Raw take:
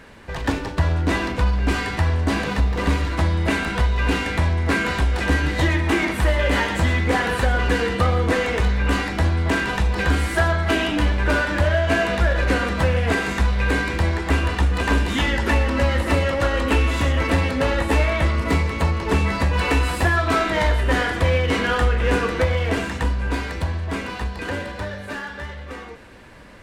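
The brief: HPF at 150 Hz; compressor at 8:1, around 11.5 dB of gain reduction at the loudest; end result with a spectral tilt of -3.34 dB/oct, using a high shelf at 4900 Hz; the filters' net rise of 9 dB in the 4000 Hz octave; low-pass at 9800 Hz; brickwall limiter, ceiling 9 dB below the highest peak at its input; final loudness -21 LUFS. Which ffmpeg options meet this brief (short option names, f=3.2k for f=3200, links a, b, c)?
-af "highpass=150,lowpass=9.8k,equalizer=f=4k:t=o:g=8,highshelf=f=4.9k:g=9,acompressor=threshold=-27dB:ratio=8,volume=9.5dB,alimiter=limit=-12dB:level=0:latency=1"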